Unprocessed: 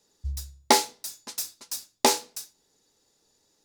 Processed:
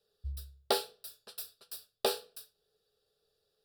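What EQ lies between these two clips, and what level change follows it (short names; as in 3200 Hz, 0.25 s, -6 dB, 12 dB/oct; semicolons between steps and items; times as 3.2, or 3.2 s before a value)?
bell 430 Hz +10.5 dB 0.21 oct; fixed phaser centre 1400 Hz, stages 8; -6.5 dB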